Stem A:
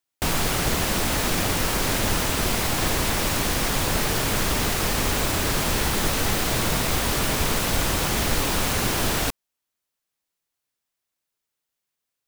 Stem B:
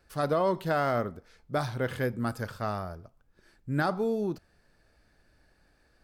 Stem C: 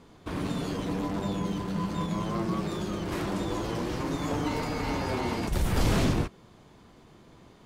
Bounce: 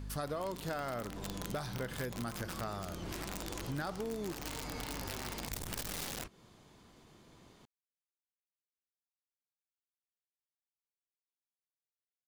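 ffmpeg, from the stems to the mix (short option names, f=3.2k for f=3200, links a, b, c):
-filter_complex "[1:a]aeval=exprs='val(0)+0.00708*(sin(2*PI*50*n/s)+sin(2*PI*2*50*n/s)/2+sin(2*PI*3*50*n/s)/3+sin(2*PI*4*50*n/s)/4+sin(2*PI*5*50*n/s)/5)':c=same,volume=1.5dB[a];[2:a]aeval=exprs='(tanh(20*val(0)+0.4)-tanh(0.4))/20':c=same,aeval=exprs='(mod(17.8*val(0)+1,2)-1)/17.8':c=same,volume=-5.5dB[b];[a][b]amix=inputs=2:normalize=0,highshelf=f=3.1k:g=8,acompressor=threshold=-38dB:ratio=4"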